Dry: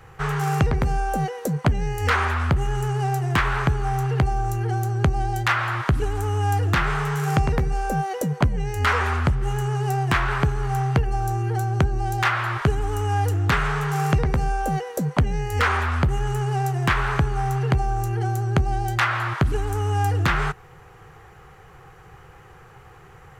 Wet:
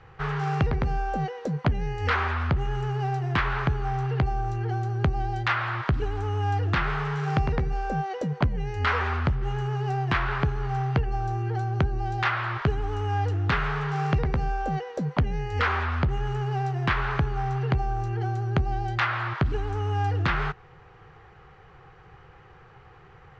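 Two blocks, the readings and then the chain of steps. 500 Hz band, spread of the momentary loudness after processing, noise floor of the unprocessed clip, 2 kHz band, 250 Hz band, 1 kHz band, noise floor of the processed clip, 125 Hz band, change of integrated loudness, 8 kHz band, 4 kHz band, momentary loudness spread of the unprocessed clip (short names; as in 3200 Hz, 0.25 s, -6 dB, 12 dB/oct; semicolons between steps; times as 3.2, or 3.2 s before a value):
-4.0 dB, 4 LU, -47 dBFS, -4.0 dB, -4.0 dB, -4.0 dB, -51 dBFS, -4.0 dB, -4.0 dB, under -15 dB, -4.5 dB, 4 LU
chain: LPF 4900 Hz 24 dB/oct; gain -4 dB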